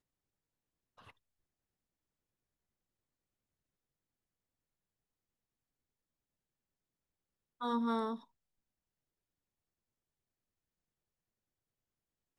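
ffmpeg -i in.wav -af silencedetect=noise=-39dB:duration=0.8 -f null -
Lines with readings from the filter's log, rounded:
silence_start: 0.00
silence_end: 7.61 | silence_duration: 7.61
silence_start: 8.16
silence_end: 12.39 | silence_duration: 4.23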